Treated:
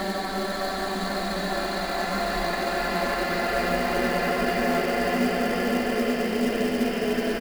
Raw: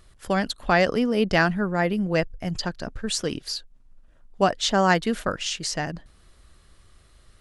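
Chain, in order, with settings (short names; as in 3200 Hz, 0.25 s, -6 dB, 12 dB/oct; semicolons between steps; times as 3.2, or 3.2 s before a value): comb 2.9 ms, depth 36%; in parallel at +1.5 dB: limiter -14 dBFS, peak gain reduction 8 dB; on the sum: Paulstretch 9.2×, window 1.00 s, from 0.34; short-mantissa float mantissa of 2-bit; gain -8.5 dB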